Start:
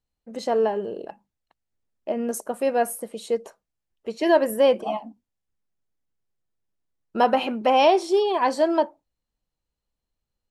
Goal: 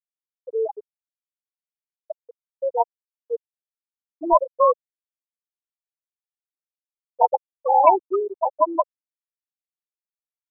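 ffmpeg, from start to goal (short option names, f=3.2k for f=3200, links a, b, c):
-af "acrusher=samples=27:mix=1:aa=0.000001,afftfilt=real='re*gte(hypot(re,im),0.631)':imag='im*gte(hypot(re,im),0.631)':win_size=1024:overlap=0.75,equalizer=f=125:t=o:w=1:g=-9,equalizer=f=250:t=o:w=1:g=-3,equalizer=f=1k:t=o:w=1:g=9,volume=-1dB"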